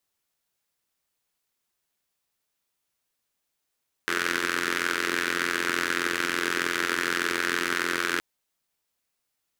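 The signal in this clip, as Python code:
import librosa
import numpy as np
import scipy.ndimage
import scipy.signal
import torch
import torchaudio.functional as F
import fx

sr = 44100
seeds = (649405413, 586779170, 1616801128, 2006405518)

y = fx.engine_four(sr, seeds[0], length_s=4.12, rpm=2600, resonances_hz=(360.0, 1500.0))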